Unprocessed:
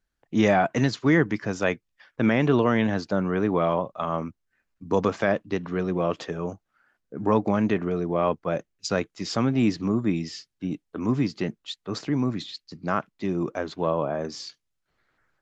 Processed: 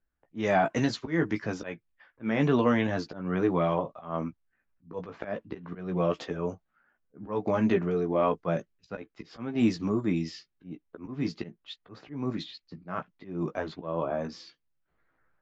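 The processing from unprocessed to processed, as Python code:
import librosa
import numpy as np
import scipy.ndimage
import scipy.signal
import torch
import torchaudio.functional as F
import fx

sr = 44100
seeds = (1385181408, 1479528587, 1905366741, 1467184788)

y = fx.auto_swell(x, sr, attack_ms=225.0)
y = fx.chorus_voices(y, sr, voices=6, hz=0.27, base_ms=15, depth_ms=3.6, mix_pct=35)
y = fx.env_lowpass(y, sr, base_hz=2000.0, full_db=-21.5)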